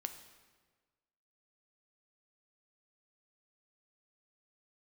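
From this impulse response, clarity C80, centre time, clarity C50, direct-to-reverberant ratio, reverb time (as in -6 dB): 11.5 dB, 16 ms, 10.0 dB, 7.5 dB, 1.4 s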